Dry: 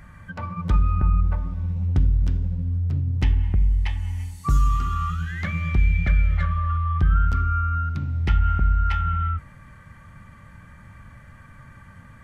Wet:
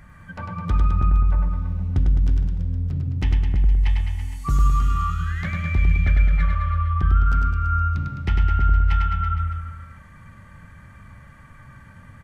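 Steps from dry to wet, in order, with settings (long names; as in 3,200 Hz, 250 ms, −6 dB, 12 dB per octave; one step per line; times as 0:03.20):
reverse bouncing-ball delay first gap 100 ms, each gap 1.1×, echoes 5
level −1.5 dB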